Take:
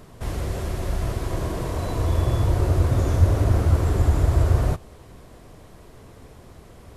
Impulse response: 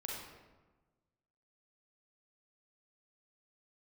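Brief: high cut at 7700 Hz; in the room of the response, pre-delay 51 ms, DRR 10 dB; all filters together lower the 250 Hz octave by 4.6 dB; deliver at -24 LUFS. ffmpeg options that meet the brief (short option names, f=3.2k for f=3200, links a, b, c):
-filter_complex "[0:a]lowpass=7.7k,equalizer=f=250:t=o:g=-7.5,asplit=2[a][b];[1:a]atrim=start_sample=2205,adelay=51[c];[b][c]afir=irnorm=-1:irlink=0,volume=-10dB[d];[a][d]amix=inputs=2:normalize=0,volume=-0.5dB"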